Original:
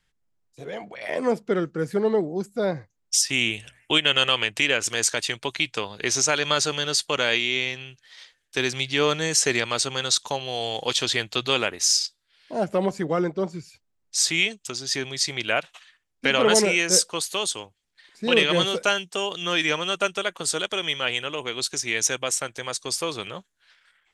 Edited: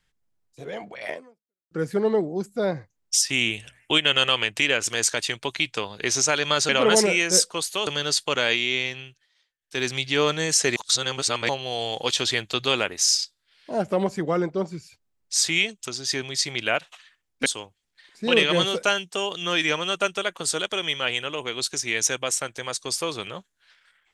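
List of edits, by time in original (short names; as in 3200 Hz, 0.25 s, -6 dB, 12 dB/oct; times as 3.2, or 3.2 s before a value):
1.1–1.71 fade out exponential
7.84–8.69 dip -21 dB, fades 0.27 s
9.58–10.31 reverse
16.28–17.46 move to 6.69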